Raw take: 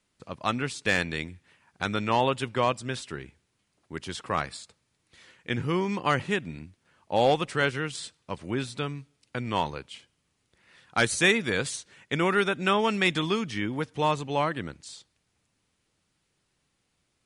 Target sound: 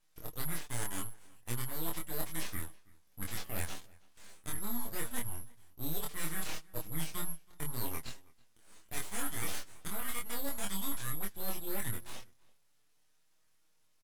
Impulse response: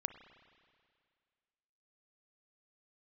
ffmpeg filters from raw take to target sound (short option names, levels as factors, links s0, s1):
-filter_complex "[0:a]afftfilt=real='real(if(lt(b,272),68*(eq(floor(b/68),0)*3+eq(floor(b/68),1)*2+eq(floor(b/68),2)*1+eq(floor(b/68),3)*0)+mod(b,68),b),0)':imag='imag(if(lt(b,272),68*(eq(floor(b/68),0)*3+eq(floor(b/68),1)*2+eq(floor(b/68),2)*1+eq(floor(b/68),3)*0)+mod(b,68),b),0)':win_size=2048:overlap=0.75,lowpass=5700,equalizer=f=310:w=0.48:g=4.5,bandreject=f=700:w=12,areverse,acompressor=threshold=0.0224:ratio=20,areverse,aeval=exprs='abs(val(0))':c=same,flanger=delay=7.8:depth=5.4:regen=30:speed=0.12:shape=sinusoidal,asetrate=54243,aresample=44100,asplit=2[s0][s1];[s1]adelay=25,volume=0.794[s2];[s0][s2]amix=inputs=2:normalize=0,asplit=2[s3][s4];[s4]adelay=326.5,volume=0.0631,highshelf=f=4000:g=-7.35[s5];[s3][s5]amix=inputs=2:normalize=0,volume=1.5"